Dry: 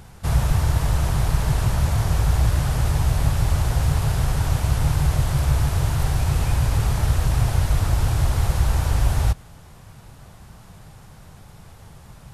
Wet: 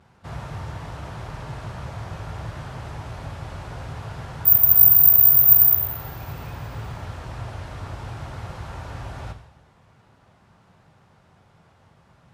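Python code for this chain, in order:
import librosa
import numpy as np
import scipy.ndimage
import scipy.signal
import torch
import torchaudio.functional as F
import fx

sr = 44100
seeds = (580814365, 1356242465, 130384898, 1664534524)

y = fx.vibrato(x, sr, rate_hz=0.5, depth_cents=31.0)
y = fx.riaa(y, sr, side='playback')
y = fx.resample_bad(y, sr, factor=3, down='filtered', up='zero_stuff', at=(4.45, 5.75))
y = fx.weighting(y, sr, curve='A')
y = fx.rev_double_slope(y, sr, seeds[0], early_s=0.78, late_s=2.0, knee_db=-18, drr_db=5.5)
y = F.gain(torch.from_numpy(y), -7.5).numpy()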